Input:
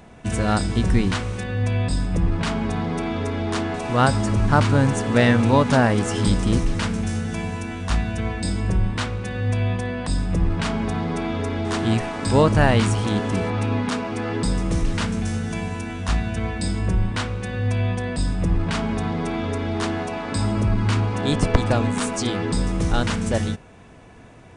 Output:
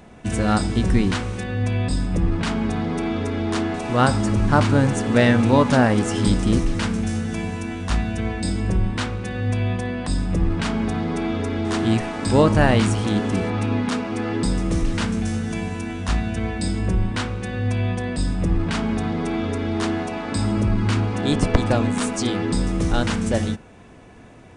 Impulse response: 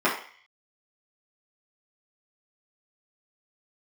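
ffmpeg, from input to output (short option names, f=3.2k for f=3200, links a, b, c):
-filter_complex "[0:a]asplit=2[a][b];[1:a]atrim=start_sample=2205,lowpass=f=1.4k:w=0.5412,lowpass=f=1.4k:w=1.3066[c];[b][c]afir=irnorm=-1:irlink=0,volume=-26.5dB[d];[a][d]amix=inputs=2:normalize=0"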